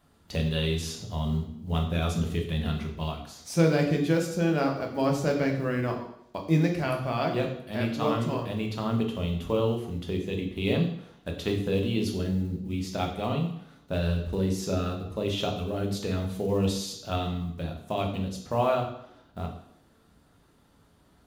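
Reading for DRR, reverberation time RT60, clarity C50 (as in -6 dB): 2.0 dB, 0.70 s, 7.5 dB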